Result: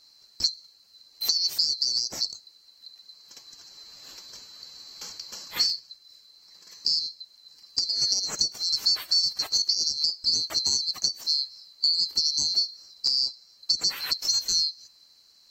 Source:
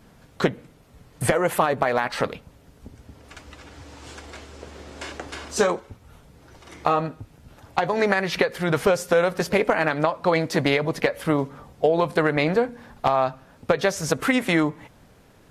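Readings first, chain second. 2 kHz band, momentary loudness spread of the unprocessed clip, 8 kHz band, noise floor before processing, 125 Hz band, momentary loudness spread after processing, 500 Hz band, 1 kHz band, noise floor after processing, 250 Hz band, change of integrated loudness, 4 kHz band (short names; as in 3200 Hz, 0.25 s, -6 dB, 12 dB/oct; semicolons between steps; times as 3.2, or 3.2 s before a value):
-20.0 dB, 17 LU, +7.0 dB, -53 dBFS, under -20 dB, 20 LU, -32.0 dB, -24.5 dB, -58 dBFS, under -25 dB, -1.0 dB, +13.5 dB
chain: band-swap scrambler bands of 4000 Hz; gain -4.5 dB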